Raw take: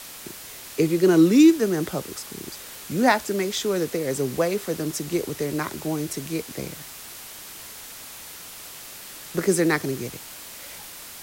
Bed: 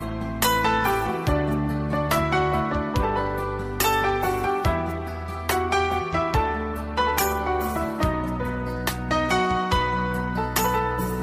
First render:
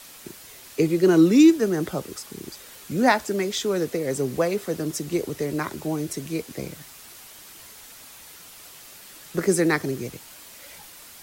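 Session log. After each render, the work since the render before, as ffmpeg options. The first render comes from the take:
-af "afftdn=nr=6:nf=-41"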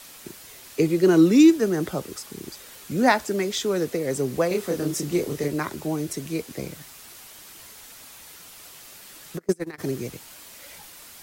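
-filter_complex "[0:a]asettb=1/sr,asplit=3[s0][s1][s2];[s0]atrim=end=4.484[s3];[s1]atrim=start=4.48:end=5.48,asetpts=PTS-STARTPTS,afade=t=in:d=0.004:c=qsin,afade=t=out:st=0.996:d=0.004:c=qsin,asplit=2[s4][s5];[s5]adelay=28,volume=0.708[s6];[s4][s6]amix=inputs=2:normalize=0,atrim=end_sample=44100[s7];[s2]atrim=start=5.476[s8];[s3][s7]acrossfade=d=0.004:c1=hsin:c2=qsin[s9];[s9][s8]acrossfade=d=0.004:c1=qsin:c2=hsin,asplit=3[s10][s11][s12];[s10]afade=t=out:st=9.37:d=0.02[s13];[s11]agate=range=0.0282:threshold=0.126:ratio=16:release=100:detection=peak,afade=t=in:st=9.37:d=0.02,afade=t=out:st=9.78:d=0.02[s14];[s12]afade=t=in:st=9.78:d=0.02[s15];[s13][s14][s15]amix=inputs=3:normalize=0"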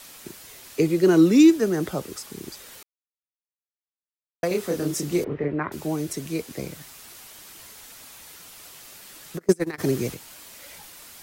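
-filter_complex "[0:a]asettb=1/sr,asplit=3[s0][s1][s2];[s0]atrim=end=5.244[s3];[s1]atrim=start=5.24:end=5.72,asetpts=PTS-STARTPTS,afade=t=in:d=0.004:c=qsin,afade=t=out:st=0.476:d=0.004:c=qsin,lowpass=f=2300:w=0.5412,lowpass=f=2300:w=1.3066[s4];[s2]atrim=start=5.716[s5];[s3][s4]acrossfade=d=0.004:c1=hsin:c2=qsin[s6];[s6][s5]acrossfade=d=0.004:c1=qsin:c2=hsin,asplit=3[s7][s8][s9];[s7]afade=t=out:st=9.4:d=0.02[s10];[s8]acontrast=22,afade=t=in:st=9.4:d=0.02,afade=t=out:st=10.13:d=0.02[s11];[s9]afade=t=in:st=10.13:d=0.02[s12];[s10][s11][s12]amix=inputs=3:normalize=0,asplit=3[s13][s14][s15];[s13]atrim=end=2.83,asetpts=PTS-STARTPTS,afade=t=out:st=2.826:d=0.004:c=hsin[s16];[s14]atrim=start=2.83:end=4.43,asetpts=PTS-STARTPTS,volume=0[s17];[s15]atrim=start=4.43,asetpts=PTS-STARTPTS,afade=t=in:d=0.004:c=hsin[s18];[s16][s17][s18]concat=n=3:v=0:a=1"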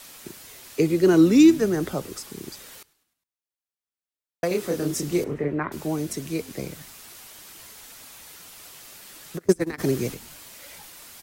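-filter_complex "[0:a]asplit=5[s0][s1][s2][s3][s4];[s1]adelay=102,afreqshift=-63,volume=0.0708[s5];[s2]adelay=204,afreqshift=-126,volume=0.0398[s6];[s3]adelay=306,afreqshift=-189,volume=0.0221[s7];[s4]adelay=408,afreqshift=-252,volume=0.0124[s8];[s0][s5][s6][s7][s8]amix=inputs=5:normalize=0"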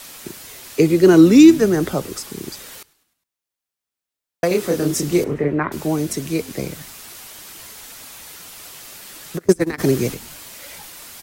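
-af "volume=2.11,alimiter=limit=0.891:level=0:latency=1"

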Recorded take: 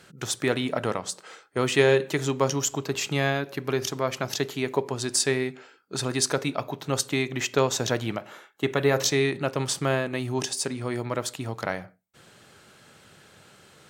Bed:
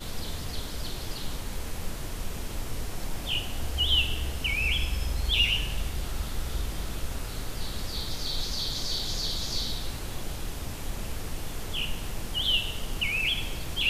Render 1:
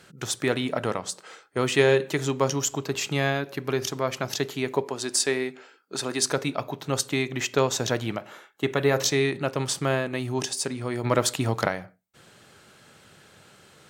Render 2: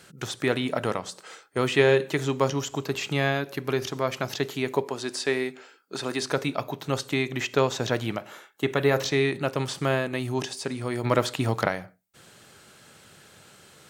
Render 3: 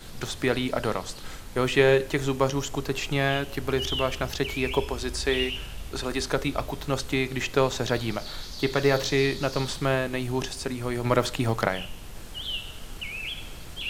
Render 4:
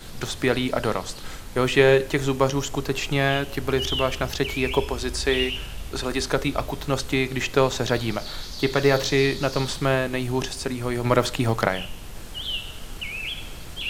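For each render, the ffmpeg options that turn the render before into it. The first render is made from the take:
-filter_complex "[0:a]asettb=1/sr,asplit=3[s0][s1][s2];[s0]atrim=end=4.844[s3];[s1]atrim=start=4.84:end=6.22,asetpts=PTS-STARTPTS,afade=t=in:d=0.004:c=qsin,afade=t=out:st=1.376:d=0.004:c=qsin,highpass=220[s4];[s2]atrim=start=6.216[s5];[s3][s4]acrossfade=d=0.004:c1=hsin:c2=qsin[s6];[s6][s5]acrossfade=d=0.004:c1=qsin:c2=hsin,asplit=3[s7][s8][s9];[s7]afade=t=out:st=11.03:d=0.02[s10];[s8]acontrast=89,afade=t=in:st=11.03:d=0.02,afade=t=out:st=11.67:d=0.02[s11];[s9]afade=t=in:st=11.67:d=0.02[s12];[s10][s11][s12]amix=inputs=3:normalize=0"
-filter_complex "[0:a]acrossover=split=4000[s0][s1];[s1]acompressor=threshold=0.00631:ratio=4:attack=1:release=60[s2];[s0][s2]amix=inputs=2:normalize=0,highshelf=f=5700:g=6"
-filter_complex "[1:a]volume=0.447[s0];[0:a][s0]amix=inputs=2:normalize=0"
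-af "volume=1.41"

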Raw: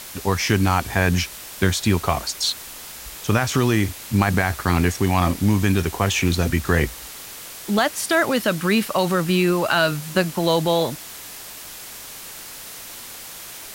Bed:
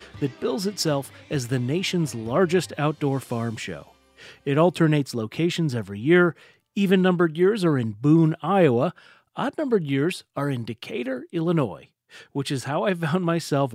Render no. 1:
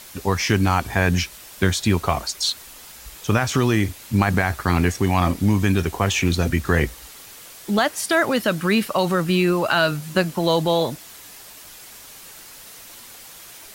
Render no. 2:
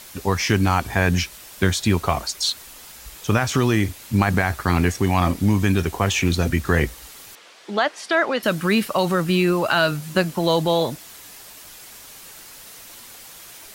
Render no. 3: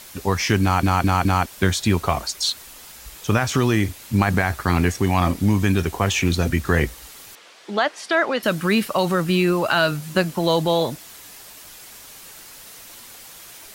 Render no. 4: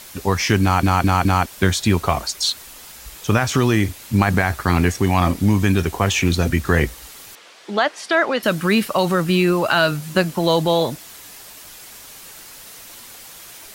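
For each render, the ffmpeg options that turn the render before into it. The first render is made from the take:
-af "afftdn=nr=6:nf=-38"
-filter_complex "[0:a]asettb=1/sr,asplit=3[s0][s1][s2];[s0]atrim=end=7.354[s3];[s1]atrim=start=7.35:end=8.43,asetpts=PTS-STARTPTS,afade=t=in:d=0.004:c=qsin,afade=t=out:st=1.076:d=0.004:c=qsin,highpass=340,lowpass=4200[s4];[s2]atrim=start=8.426[s5];[s3][s4]acrossfade=d=0.004:c1=hsin:c2=qsin[s6];[s6][s5]acrossfade=d=0.004:c1=qsin:c2=hsin"
-filter_complex "[0:a]asplit=5[s0][s1][s2][s3][s4];[s0]atrim=end=0.832[s5];[s1]atrim=start=0.618:end=0.832[s6];[s2]atrim=start=0.618:end=0.832[s7];[s3]atrim=start=0.618:end=0.832[s8];[s4]atrim=start=1.458[s9];[s5][s6]acrossfade=d=0.004:c1=hsin:c2=hsin[s10];[s10][s7]acrossfade=d=0.004:c1=hsin:c2=hsin[s11];[s11][s8]acrossfade=d=0.004:c1=hsin:c2=hsin[s12];[s12][s9]acrossfade=d=0.004:c1=hsin:c2=hsin"
-af "volume=1.26"

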